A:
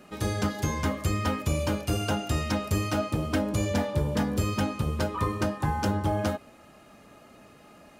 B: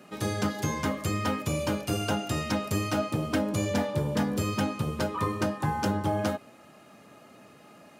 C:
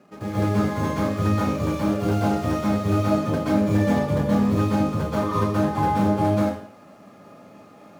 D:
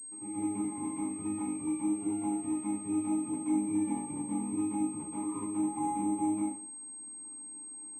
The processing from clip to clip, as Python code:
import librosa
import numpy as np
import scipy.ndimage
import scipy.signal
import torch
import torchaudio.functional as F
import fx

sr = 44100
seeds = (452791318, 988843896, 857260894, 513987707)

y1 = scipy.signal.sosfilt(scipy.signal.butter(4, 100.0, 'highpass', fs=sr, output='sos'), x)
y2 = scipy.ndimage.median_filter(y1, 15, mode='constant')
y2 = fx.rev_plate(y2, sr, seeds[0], rt60_s=0.54, hf_ratio=0.95, predelay_ms=115, drr_db=-7.5)
y2 = F.gain(torch.from_numpy(y2), -2.0).numpy()
y3 = fx.vowel_filter(y2, sr, vowel='u')
y3 = fx.pwm(y3, sr, carrier_hz=8400.0)
y3 = F.gain(torch.from_numpy(y3), -3.0).numpy()